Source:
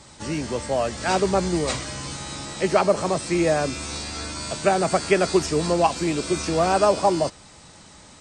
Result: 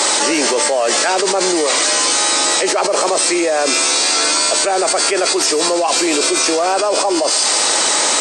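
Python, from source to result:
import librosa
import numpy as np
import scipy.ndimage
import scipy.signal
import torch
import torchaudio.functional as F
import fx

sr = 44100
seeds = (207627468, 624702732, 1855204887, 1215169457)

y = scipy.signal.sosfilt(scipy.signal.butter(4, 360.0, 'highpass', fs=sr, output='sos'), x)
y = fx.high_shelf(y, sr, hz=6700.0, db=5.0)
y = fx.echo_wet_highpass(y, sr, ms=144, feedback_pct=42, hz=3800.0, wet_db=-7)
y = fx.env_flatten(y, sr, amount_pct=100)
y = y * 10.0 ** (-1.0 / 20.0)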